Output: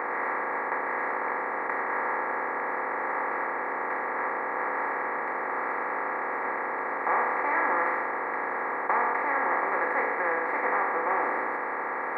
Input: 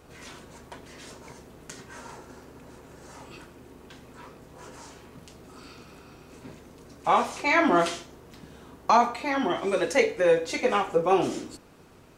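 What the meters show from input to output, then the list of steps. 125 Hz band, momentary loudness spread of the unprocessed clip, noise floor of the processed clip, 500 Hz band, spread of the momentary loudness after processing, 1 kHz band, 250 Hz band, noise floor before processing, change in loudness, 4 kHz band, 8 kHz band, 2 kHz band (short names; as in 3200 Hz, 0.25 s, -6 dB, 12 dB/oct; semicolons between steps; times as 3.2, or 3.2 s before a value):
under -15 dB, 21 LU, -32 dBFS, -4.5 dB, 4 LU, +2.5 dB, -8.0 dB, -52 dBFS, -4.0 dB, under -25 dB, under -25 dB, +5.5 dB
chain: per-bin compression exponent 0.2; elliptic low-pass 1900 Hz, stop band 40 dB; differentiator; notch 690 Hz, Q 12; gain +7 dB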